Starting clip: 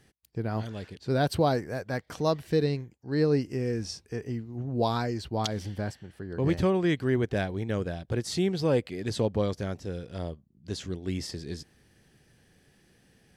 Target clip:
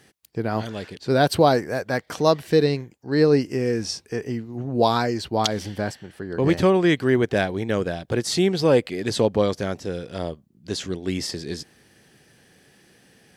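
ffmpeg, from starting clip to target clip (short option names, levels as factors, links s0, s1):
-af "highpass=f=230:p=1,volume=2.82"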